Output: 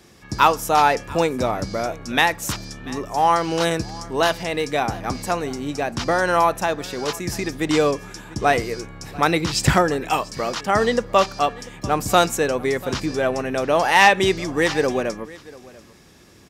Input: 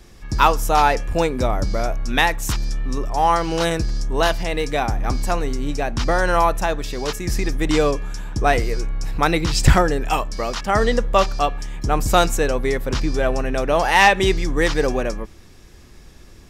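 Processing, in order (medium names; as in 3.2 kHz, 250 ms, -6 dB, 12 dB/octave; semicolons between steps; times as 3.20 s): high-pass 120 Hz 12 dB/octave; on a send: delay 691 ms -21 dB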